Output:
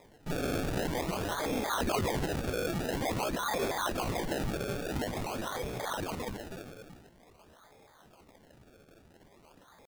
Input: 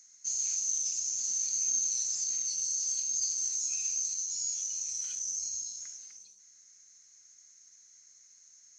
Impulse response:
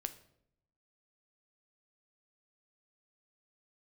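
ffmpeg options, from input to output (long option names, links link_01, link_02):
-af "acrusher=samples=30:mix=1:aa=0.000001:lfo=1:lforange=30:lforate=0.54,atempo=0.89"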